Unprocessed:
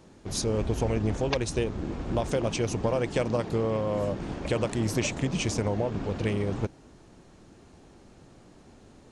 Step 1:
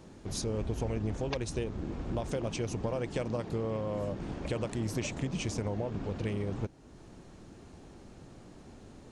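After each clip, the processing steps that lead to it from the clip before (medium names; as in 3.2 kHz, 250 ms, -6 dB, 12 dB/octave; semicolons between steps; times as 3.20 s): bass shelf 320 Hz +3 dB; compression 1.5:1, threshold -44 dBFS, peak gain reduction 9 dB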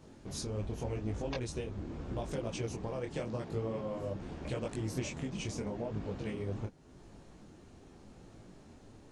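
detune thickener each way 29 cents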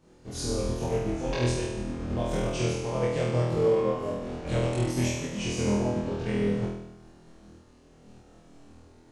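flutter echo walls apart 4.2 m, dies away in 1.2 s; upward expansion 1.5:1, over -52 dBFS; trim +6.5 dB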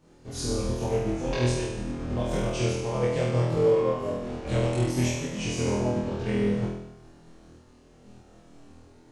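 flange 0.55 Hz, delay 6.7 ms, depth 2.6 ms, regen -54%; trim +5 dB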